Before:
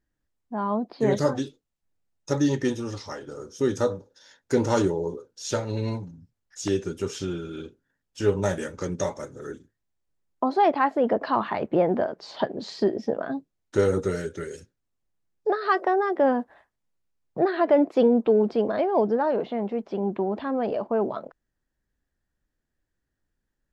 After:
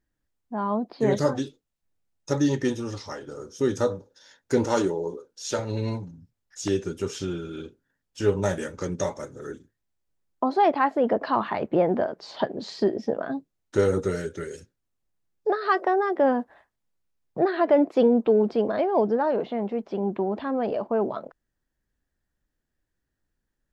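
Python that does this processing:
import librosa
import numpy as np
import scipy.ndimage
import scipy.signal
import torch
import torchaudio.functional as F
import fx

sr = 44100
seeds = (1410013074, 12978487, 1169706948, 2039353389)

y = fx.peak_eq(x, sr, hz=90.0, db=-10.5, octaves=1.6, at=(4.64, 5.59))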